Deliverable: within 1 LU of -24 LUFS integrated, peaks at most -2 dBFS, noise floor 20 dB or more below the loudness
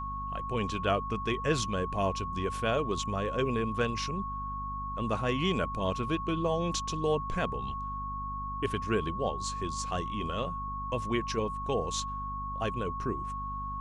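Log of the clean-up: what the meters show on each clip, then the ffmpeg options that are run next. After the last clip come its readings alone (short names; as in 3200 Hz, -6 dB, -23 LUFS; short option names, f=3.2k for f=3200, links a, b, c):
hum 50 Hz; harmonics up to 250 Hz; hum level -38 dBFS; steady tone 1100 Hz; tone level -35 dBFS; loudness -32.5 LUFS; peak -14.5 dBFS; loudness target -24.0 LUFS
-> -af "bandreject=f=50:t=h:w=4,bandreject=f=100:t=h:w=4,bandreject=f=150:t=h:w=4,bandreject=f=200:t=h:w=4,bandreject=f=250:t=h:w=4"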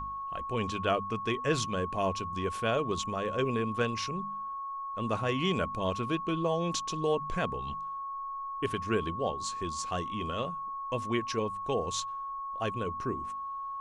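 hum none; steady tone 1100 Hz; tone level -35 dBFS
-> -af "bandreject=f=1.1k:w=30"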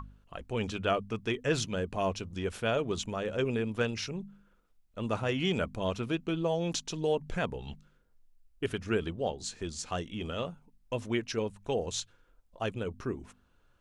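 steady tone none; loudness -33.5 LUFS; peak -15.5 dBFS; loudness target -24.0 LUFS
-> -af "volume=9.5dB"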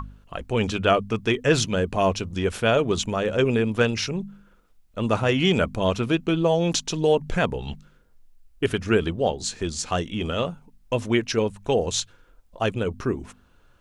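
loudness -24.0 LUFS; peak -6.0 dBFS; noise floor -57 dBFS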